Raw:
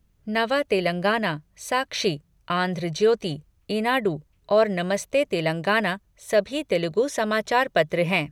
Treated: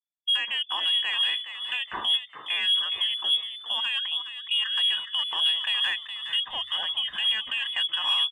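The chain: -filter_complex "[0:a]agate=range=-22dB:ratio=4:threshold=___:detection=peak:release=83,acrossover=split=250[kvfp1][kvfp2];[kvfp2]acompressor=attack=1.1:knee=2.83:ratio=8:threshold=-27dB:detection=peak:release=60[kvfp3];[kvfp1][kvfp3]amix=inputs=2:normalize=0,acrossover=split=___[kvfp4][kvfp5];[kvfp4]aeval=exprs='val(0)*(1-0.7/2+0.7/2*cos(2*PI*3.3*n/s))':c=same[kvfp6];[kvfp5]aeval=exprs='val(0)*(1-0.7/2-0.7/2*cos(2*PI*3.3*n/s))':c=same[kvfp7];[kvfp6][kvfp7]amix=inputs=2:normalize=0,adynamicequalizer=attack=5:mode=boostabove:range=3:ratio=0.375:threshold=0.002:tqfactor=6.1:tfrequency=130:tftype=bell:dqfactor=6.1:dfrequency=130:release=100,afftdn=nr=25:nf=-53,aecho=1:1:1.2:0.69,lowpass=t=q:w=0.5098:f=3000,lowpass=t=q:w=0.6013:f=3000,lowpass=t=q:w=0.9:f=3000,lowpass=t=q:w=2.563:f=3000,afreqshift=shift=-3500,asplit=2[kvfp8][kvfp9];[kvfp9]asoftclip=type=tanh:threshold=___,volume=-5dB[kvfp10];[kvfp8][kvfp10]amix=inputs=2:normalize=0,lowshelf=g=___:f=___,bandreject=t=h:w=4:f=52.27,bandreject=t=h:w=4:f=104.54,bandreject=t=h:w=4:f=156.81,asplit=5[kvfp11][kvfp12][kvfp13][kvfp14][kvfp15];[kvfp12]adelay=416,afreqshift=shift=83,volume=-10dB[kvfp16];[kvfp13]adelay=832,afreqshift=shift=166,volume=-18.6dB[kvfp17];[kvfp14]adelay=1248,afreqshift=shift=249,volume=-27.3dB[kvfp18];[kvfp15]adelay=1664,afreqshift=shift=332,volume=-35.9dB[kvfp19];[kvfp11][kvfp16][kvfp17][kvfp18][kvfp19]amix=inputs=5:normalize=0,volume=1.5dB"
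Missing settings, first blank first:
-51dB, 810, -27dB, -6.5, 200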